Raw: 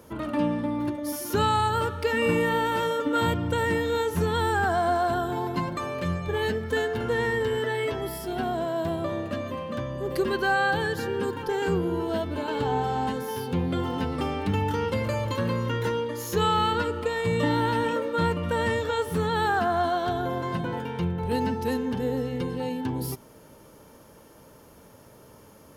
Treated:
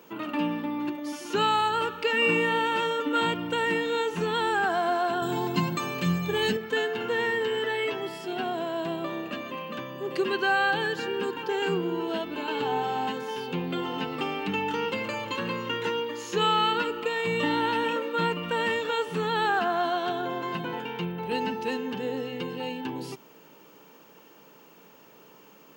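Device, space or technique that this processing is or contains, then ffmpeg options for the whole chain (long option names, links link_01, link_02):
old television with a line whistle: -filter_complex "[0:a]highpass=frequency=180:width=0.5412,highpass=frequency=180:width=1.3066,equalizer=frequency=240:width_type=q:width=4:gain=-6,equalizer=frequency=580:width_type=q:width=4:gain=-7,equalizer=frequency=2700:width_type=q:width=4:gain=9,equalizer=frequency=5500:width_type=q:width=4:gain=-4,lowpass=frequency=7600:width=0.5412,lowpass=frequency=7600:width=1.3066,aeval=exprs='val(0)+0.00141*sin(2*PI*15734*n/s)':channel_layout=same,asettb=1/sr,asplit=3[link_01][link_02][link_03];[link_01]atrim=end=5.224[link_04];[link_02]atrim=start=5.22:end=6.57,asetpts=PTS-STARTPTS,afade=type=in:duration=0.004:curve=qsin,afade=type=out:start_time=1.346:duration=0.004:curve=qsin,bass=frequency=250:gain=12,treble=frequency=4000:gain=11[link_05];[link_03]atrim=start=6.566[link_06];[link_04][link_05]acrossfade=duration=0.004:curve1=hsin:curve2=qsin[link_07];[link_07][link_06]acrossfade=duration=0.004:curve1=qsin:curve2=hsin"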